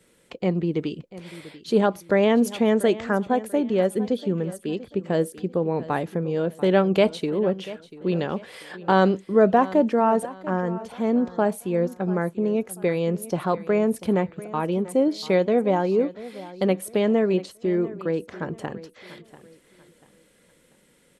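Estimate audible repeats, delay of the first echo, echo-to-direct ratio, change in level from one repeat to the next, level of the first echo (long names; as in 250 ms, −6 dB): 2, 690 ms, −16.5 dB, −9.5 dB, −17.0 dB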